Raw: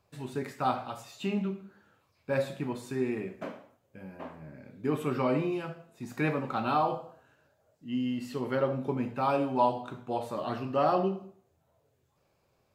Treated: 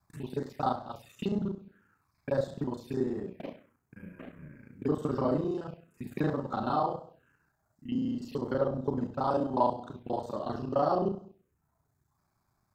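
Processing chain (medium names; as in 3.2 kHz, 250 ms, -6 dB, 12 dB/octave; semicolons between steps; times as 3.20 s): time reversed locally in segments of 33 ms; touch-sensitive phaser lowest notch 490 Hz, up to 2.4 kHz, full sweep at -31 dBFS; transient shaper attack +2 dB, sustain -2 dB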